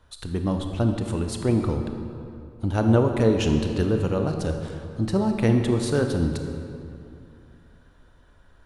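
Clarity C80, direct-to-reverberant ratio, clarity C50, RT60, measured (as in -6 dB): 6.5 dB, 4.5 dB, 5.5 dB, 2.5 s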